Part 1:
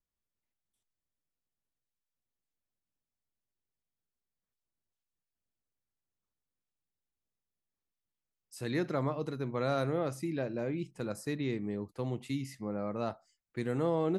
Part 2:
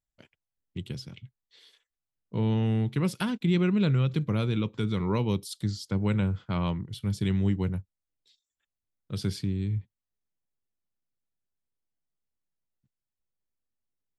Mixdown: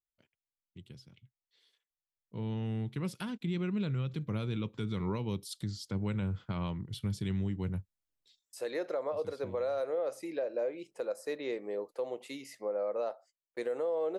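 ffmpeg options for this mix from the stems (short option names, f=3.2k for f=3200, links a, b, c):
-filter_complex "[0:a]agate=range=-30dB:threshold=-57dB:ratio=16:detection=peak,highpass=f=520:t=q:w=4.1,volume=-0.5dB,asplit=2[a][b];[1:a]dynaudnorm=f=320:g=21:m=15.5dB,volume=-15dB[c];[b]apad=whole_len=625664[d];[c][d]sidechaincompress=threshold=-40dB:ratio=8:attack=16:release=1330[e];[a][e]amix=inputs=2:normalize=0,alimiter=level_in=2dB:limit=-24dB:level=0:latency=1:release=253,volume=-2dB"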